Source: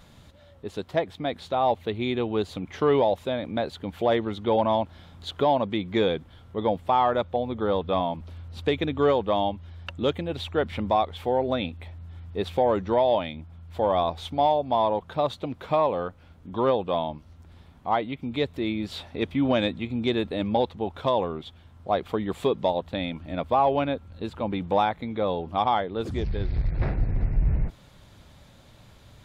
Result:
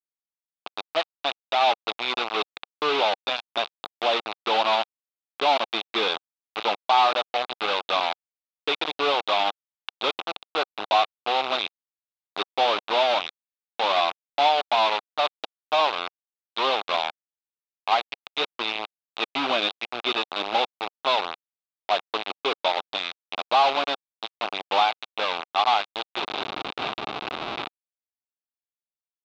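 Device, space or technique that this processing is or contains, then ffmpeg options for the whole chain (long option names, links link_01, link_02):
hand-held game console: -af "acrusher=bits=3:mix=0:aa=0.000001,highpass=480,equalizer=frequency=520:width_type=q:width=4:gain=-5,equalizer=frequency=770:width_type=q:width=4:gain=4,equalizer=frequency=1200:width_type=q:width=4:gain=4,equalizer=frequency=1800:width_type=q:width=4:gain=-6,equalizer=frequency=2600:width_type=q:width=4:gain=5,equalizer=frequency=3700:width_type=q:width=4:gain=8,lowpass=frequency=4100:width=0.5412,lowpass=frequency=4100:width=1.3066"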